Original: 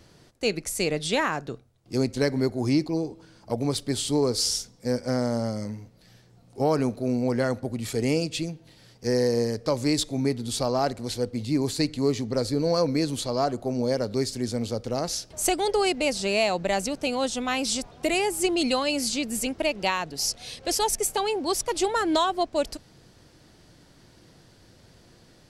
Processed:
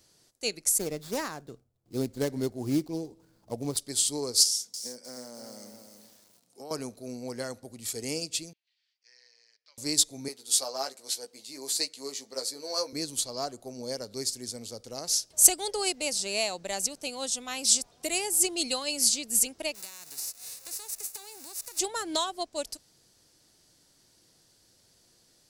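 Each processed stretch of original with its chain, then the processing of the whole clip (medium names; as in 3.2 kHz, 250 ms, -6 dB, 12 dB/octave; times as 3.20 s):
0.78–3.77 s: median filter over 15 samples + bass shelf 400 Hz +7 dB
4.43–6.71 s: high-pass 160 Hz 24 dB/octave + compression 2:1, threshold -31 dBFS + bit-crushed delay 308 ms, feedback 35%, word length 8-bit, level -6 dB
8.53–9.78 s: ladder band-pass 2.9 kHz, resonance 35% + distance through air 120 m
10.28–12.93 s: high-pass 450 Hz + doubling 15 ms -5 dB
19.74–21.78 s: formants flattened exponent 0.3 + band-stop 3.2 kHz, Q 5.6 + compression 5:1, threshold -35 dBFS
whole clip: tone controls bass -5 dB, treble +15 dB; upward expansion 1.5:1, over -29 dBFS; trim -3 dB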